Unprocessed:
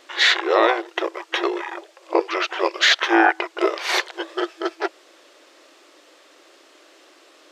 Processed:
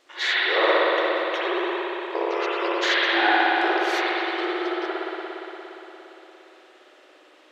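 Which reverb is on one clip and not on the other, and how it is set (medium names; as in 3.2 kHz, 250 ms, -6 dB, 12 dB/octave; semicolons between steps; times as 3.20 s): spring tank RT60 3.9 s, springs 58 ms, chirp 55 ms, DRR -8.5 dB; trim -10.5 dB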